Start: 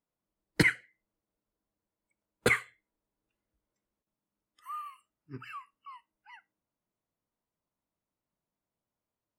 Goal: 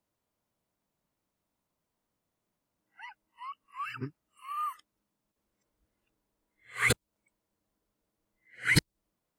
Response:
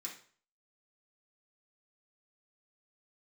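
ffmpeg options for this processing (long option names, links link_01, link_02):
-filter_complex "[0:a]areverse,acrossover=split=150|3000[link_01][link_02][link_03];[link_02]acompressor=threshold=-34dB:ratio=6[link_04];[link_01][link_04][link_03]amix=inputs=3:normalize=0,volume=6dB"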